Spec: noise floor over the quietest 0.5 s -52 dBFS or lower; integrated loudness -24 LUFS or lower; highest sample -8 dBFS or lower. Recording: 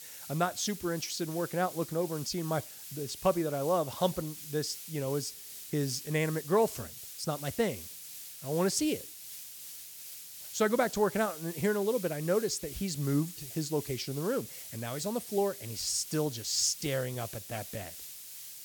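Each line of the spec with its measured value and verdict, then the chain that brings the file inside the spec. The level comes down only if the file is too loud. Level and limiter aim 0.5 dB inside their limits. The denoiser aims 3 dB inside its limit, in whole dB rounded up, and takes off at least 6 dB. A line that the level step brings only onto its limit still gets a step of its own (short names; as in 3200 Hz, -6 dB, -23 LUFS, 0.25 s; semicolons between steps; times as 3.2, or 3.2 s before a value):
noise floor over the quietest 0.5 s -46 dBFS: fail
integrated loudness -32.5 LUFS: OK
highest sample -14.0 dBFS: OK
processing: denoiser 9 dB, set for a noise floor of -46 dBFS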